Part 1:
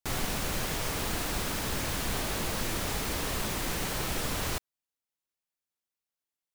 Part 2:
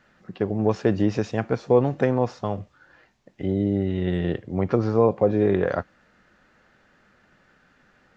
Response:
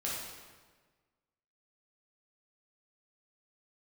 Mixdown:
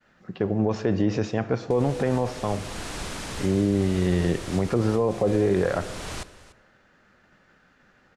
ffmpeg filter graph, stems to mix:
-filter_complex "[0:a]lowpass=f=9800:w=0.5412,lowpass=f=9800:w=1.3066,adelay=1650,volume=0.841,asplit=3[s0][s1][s2];[s1]volume=0.0841[s3];[s2]volume=0.126[s4];[1:a]agate=range=0.0224:threshold=0.00141:ratio=3:detection=peak,volume=1.06,asplit=3[s5][s6][s7];[s6]volume=0.15[s8];[s7]apad=whole_len=361374[s9];[s0][s9]sidechaincompress=threshold=0.0631:ratio=4:attack=16:release=629[s10];[2:a]atrim=start_sample=2205[s11];[s3][s8]amix=inputs=2:normalize=0[s12];[s12][s11]afir=irnorm=-1:irlink=0[s13];[s4]aecho=0:1:291:1[s14];[s10][s5][s13][s14]amix=inputs=4:normalize=0,alimiter=limit=0.237:level=0:latency=1:release=25"

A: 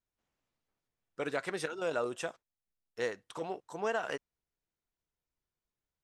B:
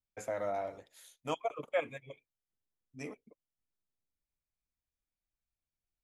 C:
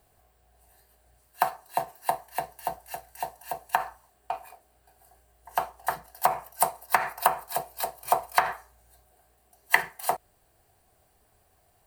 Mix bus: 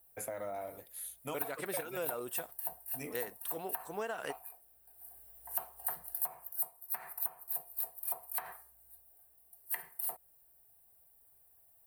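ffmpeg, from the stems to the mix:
-filter_complex "[0:a]adelay=150,volume=0.75[s0];[1:a]acompressor=threshold=0.01:ratio=2.5,volume=1.06[s1];[2:a]volume=0.531,afade=t=in:st=4.9:d=0.4:silence=0.421697,afade=t=out:st=6.22:d=0.61:silence=0.375837[s2];[s0][s1][s2]amix=inputs=3:normalize=0,aexciter=amount=10.8:drive=2.8:freq=9100,acompressor=threshold=0.0224:ratio=8"

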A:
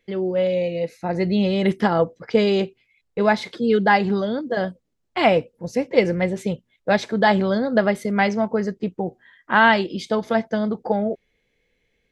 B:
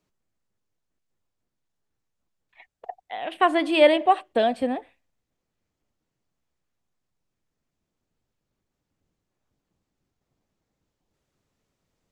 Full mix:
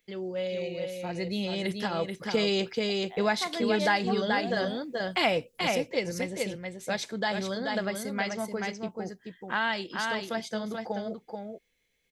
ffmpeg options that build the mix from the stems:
-filter_complex "[0:a]crystalizer=i=5:c=0,volume=0.631,afade=t=in:st=1.91:d=0.53:silence=0.398107,afade=t=out:st=5.54:d=0.57:silence=0.375837,asplit=2[s0][s1];[s1]volume=0.531[s2];[1:a]volume=0.251[s3];[s2]aecho=0:1:432:1[s4];[s0][s3][s4]amix=inputs=3:normalize=0,acompressor=threshold=0.0447:ratio=2"

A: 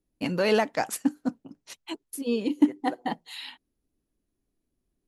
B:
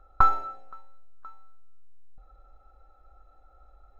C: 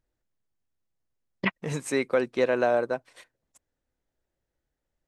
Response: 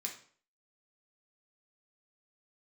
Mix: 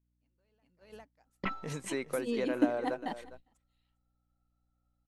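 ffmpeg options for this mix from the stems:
-filter_complex "[0:a]volume=0.422,asplit=2[s0][s1];[s1]volume=0.0944[s2];[1:a]equalizer=f=4100:w=0.79:g=11.5,adelay=1250,volume=0.237[s3];[2:a]volume=0.891,asplit=3[s4][s5][s6];[s5]volume=0.0708[s7];[s6]apad=whole_len=223767[s8];[s0][s8]sidechaingate=range=0.0282:threshold=0.00398:ratio=16:detection=peak[s9];[s3][s4]amix=inputs=2:normalize=0,aeval=exprs='val(0)+0.001*(sin(2*PI*60*n/s)+sin(2*PI*2*60*n/s)/2+sin(2*PI*3*60*n/s)/3+sin(2*PI*4*60*n/s)/4+sin(2*PI*5*60*n/s)/5)':c=same,acompressor=threshold=0.00398:ratio=1.5,volume=1[s10];[s2][s7]amix=inputs=2:normalize=0,aecho=0:1:404:1[s11];[s9][s10][s11]amix=inputs=3:normalize=0,agate=range=0.141:threshold=0.00355:ratio=16:detection=peak"

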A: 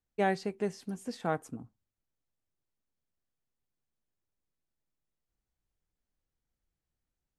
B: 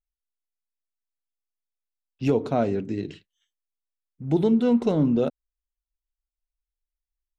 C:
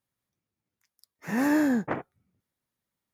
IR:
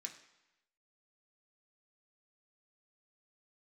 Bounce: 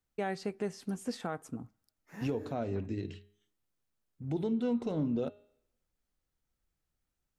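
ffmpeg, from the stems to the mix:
-filter_complex "[0:a]equalizer=f=1300:w=7.2:g=4.5,volume=1.26,asplit=2[s0][s1];[s1]volume=0.0891[s2];[1:a]equalizer=f=93:t=o:w=0.22:g=14.5,bandreject=f=205.3:t=h:w=4,bandreject=f=410.6:t=h:w=4,bandreject=f=615.9:t=h:w=4,bandreject=f=821.2:t=h:w=4,bandreject=f=1026.5:t=h:w=4,bandreject=f=1231.8:t=h:w=4,bandreject=f=1437.1:t=h:w=4,bandreject=f=1642.4:t=h:w=4,bandreject=f=1847.7:t=h:w=4,bandreject=f=2053:t=h:w=4,bandreject=f=2258.3:t=h:w=4,bandreject=f=2463.6:t=h:w=4,bandreject=f=2668.9:t=h:w=4,bandreject=f=2874.2:t=h:w=4,bandreject=f=3079.5:t=h:w=4,bandreject=f=3284.8:t=h:w=4,bandreject=f=3490.1:t=h:w=4,bandreject=f=3695.4:t=h:w=4,bandreject=f=3900.7:t=h:w=4,bandreject=f=4106:t=h:w=4,volume=0.422,asplit=3[s3][s4][s5];[s4]volume=0.158[s6];[2:a]adelay=850,volume=0.168[s7];[s5]apad=whole_len=175633[s8];[s7][s8]sidechaincompress=threshold=0.0158:ratio=8:attack=30:release=489[s9];[3:a]atrim=start_sample=2205[s10];[s2][s6]amix=inputs=2:normalize=0[s11];[s11][s10]afir=irnorm=-1:irlink=0[s12];[s0][s3][s9][s12]amix=inputs=4:normalize=0,alimiter=limit=0.0631:level=0:latency=1:release=245"

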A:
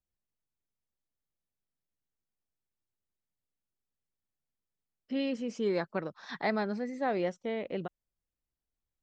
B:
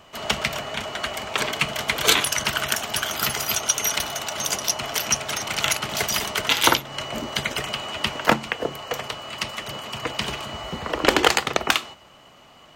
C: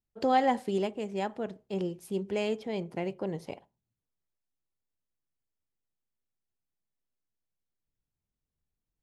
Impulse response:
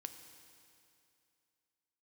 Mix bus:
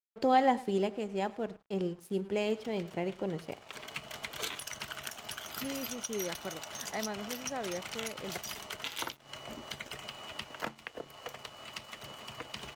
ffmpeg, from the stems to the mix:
-filter_complex "[0:a]adelay=500,volume=0.473[s0];[1:a]acompressor=threshold=0.0141:ratio=2,adelay=2350,volume=0.447[s1];[2:a]volume=0.841,asplit=4[s2][s3][s4][s5];[s3]volume=0.188[s6];[s4]volume=0.133[s7];[s5]apad=whole_len=666166[s8];[s1][s8]sidechaincompress=threshold=0.00794:ratio=8:attack=9.1:release=551[s9];[3:a]atrim=start_sample=2205[s10];[s6][s10]afir=irnorm=-1:irlink=0[s11];[s7]aecho=0:1:104|208|312:1|0.15|0.0225[s12];[s0][s9][s2][s11][s12]amix=inputs=5:normalize=0,aeval=exprs='sgn(val(0))*max(abs(val(0))-0.00178,0)':c=same"

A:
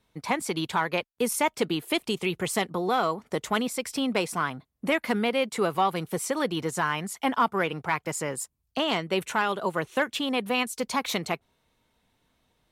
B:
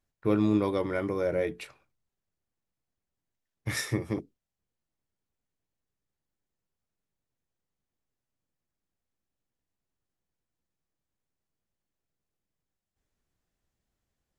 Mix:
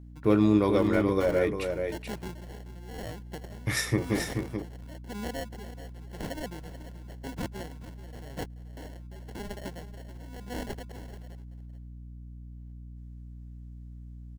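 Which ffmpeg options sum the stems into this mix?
-filter_complex "[0:a]bass=f=250:g=5,treble=f=4000:g=12,acrusher=samples=36:mix=1:aa=0.000001,aeval=exprs='val(0)*pow(10,-19*(0.5-0.5*cos(2*PI*0.94*n/s))/20)':c=same,volume=0.282,asplit=2[s0][s1];[s1]volume=0.211[s2];[1:a]aeval=exprs='val(0)+0.00398*(sin(2*PI*60*n/s)+sin(2*PI*2*60*n/s)/2+sin(2*PI*3*60*n/s)/3+sin(2*PI*4*60*n/s)/4+sin(2*PI*5*60*n/s)/5)':c=same,volume=1.41,asplit=2[s3][s4];[s4]volume=0.501[s5];[s2][s5]amix=inputs=2:normalize=0,aecho=0:1:432:1[s6];[s0][s3][s6]amix=inputs=3:normalize=0"

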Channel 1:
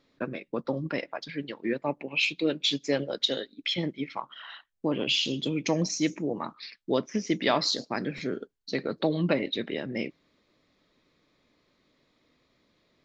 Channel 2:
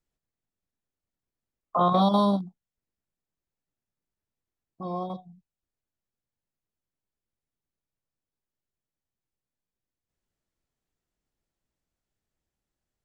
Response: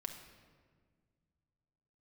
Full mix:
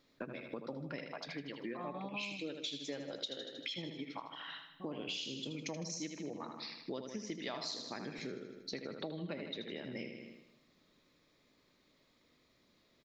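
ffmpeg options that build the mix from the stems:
-filter_complex "[0:a]highshelf=f=6800:g=10,volume=0.562,asplit=3[s0][s1][s2];[s1]volume=0.168[s3];[s2]volume=0.447[s4];[1:a]lowpass=3000,volume=0.211[s5];[2:a]atrim=start_sample=2205[s6];[s3][s6]afir=irnorm=-1:irlink=0[s7];[s4]aecho=0:1:78|156|234|312|390|468|546|624:1|0.52|0.27|0.141|0.0731|0.038|0.0198|0.0103[s8];[s0][s5][s7][s8]amix=inputs=4:normalize=0,acompressor=threshold=0.00891:ratio=4"

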